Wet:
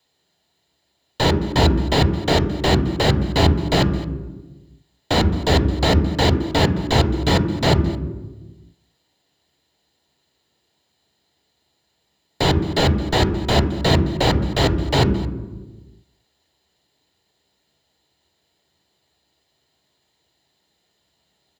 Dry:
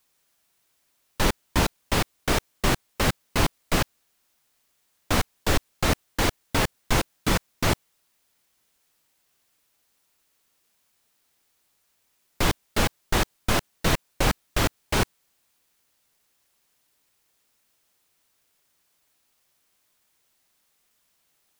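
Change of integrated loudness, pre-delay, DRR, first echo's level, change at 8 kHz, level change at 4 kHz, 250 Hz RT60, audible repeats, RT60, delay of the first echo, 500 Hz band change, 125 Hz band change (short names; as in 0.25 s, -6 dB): +7.0 dB, 3 ms, 6.5 dB, -19.0 dB, -3.0 dB, +7.0 dB, 1.5 s, 1, 1.2 s, 0.219 s, +9.0 dB, +11.0 dB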